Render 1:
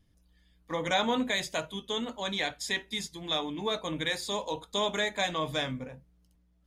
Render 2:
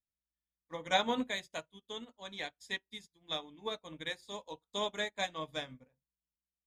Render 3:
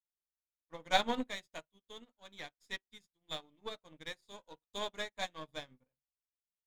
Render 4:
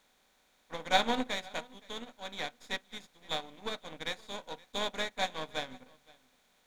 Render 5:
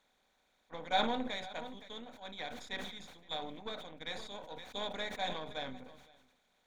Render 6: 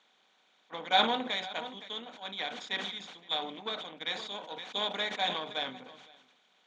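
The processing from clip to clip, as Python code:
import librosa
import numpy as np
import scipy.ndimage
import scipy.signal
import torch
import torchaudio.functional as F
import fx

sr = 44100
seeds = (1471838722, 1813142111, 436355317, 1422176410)

y1 = fx.upward_expand(x, sr, threshold_db=-47.0, expansion=2.5)
y2 = np.where(y1 < 0.0, 10.0 ** (-7.0 / 20.0) * y1, y1)
y2 = fx.upward_expand(y2, sr, threshold_db=-57.0, expansion=1.5)
y2 = F.gain(torch.from_numpy(y2), 3.5).numpy()
y3 = fx.bin_compress(y2, sr, power=0.6)
y3 = y3 + 10.0 ** (-24.0 / 20.0) * np.pad(y3, (int(518 * sr / 1000.0), 0))[:len(y3)]
y3 = F.gain(torch.from_numpy(y3), 1.5).numpy()
y4 = fx.envelope_sharpen(y3, sr, power=1.5)
y4 = fx.sustainer(y4, sr, db_per_s=50.0)
y4 = F.gain(torch.from_numpy(y4), -5.5).numpy()
y5 = fx.cabinet(y4, sr, low_hz=150.0, low_slope=24, high_hz=6900.0, hz=(150.0, 250.0, 550.0, 1200.0, 3000.0), db=(-7, -5, -4, 3, 9))
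y5 = F.gain(torch.from_numpy(y5), 5.5).numpy()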